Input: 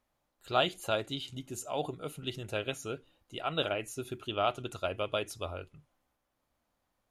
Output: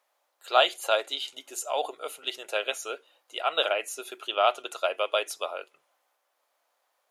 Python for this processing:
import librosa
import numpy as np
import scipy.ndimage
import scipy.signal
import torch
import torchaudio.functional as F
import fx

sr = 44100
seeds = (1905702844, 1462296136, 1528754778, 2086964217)

y = scipy.signal.sosfilt(scipy.signal.butter(4, 500.0, 'highpass', fs=sr, output='sos'), x)
y = y * 10.0 ** (7.5 / 20.0)